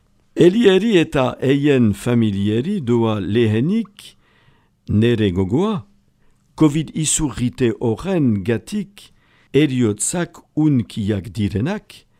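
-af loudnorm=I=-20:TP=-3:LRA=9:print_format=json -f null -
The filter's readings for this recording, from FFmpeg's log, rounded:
"input_i" : "-18.3",
"input_tp" : "-1.2",
"input_lra" : "2.6",
"input_thresh" : "-29.0",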